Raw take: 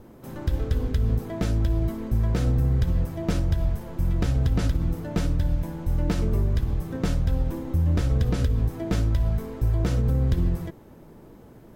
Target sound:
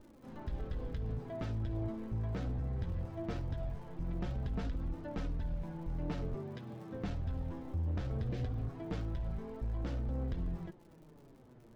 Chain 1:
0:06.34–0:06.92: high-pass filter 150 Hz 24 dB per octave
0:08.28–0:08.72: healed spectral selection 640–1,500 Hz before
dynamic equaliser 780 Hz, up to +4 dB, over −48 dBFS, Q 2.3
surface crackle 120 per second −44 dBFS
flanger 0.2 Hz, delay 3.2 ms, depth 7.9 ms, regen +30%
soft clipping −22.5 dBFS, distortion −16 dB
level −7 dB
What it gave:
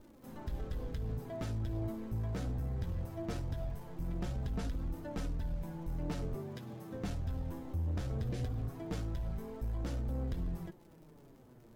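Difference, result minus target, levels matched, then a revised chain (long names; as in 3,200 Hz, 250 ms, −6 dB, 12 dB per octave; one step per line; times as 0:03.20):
4,000 Hz band +2.5 dB
0:06.34–0:06.92: high-pass filter 150 Hz 24 dB per octave
0:08.28–0:08.72: healed spectral selection 640–1,500 Hz before
dynamic equaliser 780 Hz, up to +4 dB, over −48 dBFS, Q 2.3
low-pass filter 4,000 Hz 12 dB per octave
surface crackle 120 per second −44 dBFS
flanger 0.2 Hz, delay 3.2 ms, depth 7.9 ms, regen +30%
soft clipping −22.5 dBFS, distortion −16 dB
level −7 dB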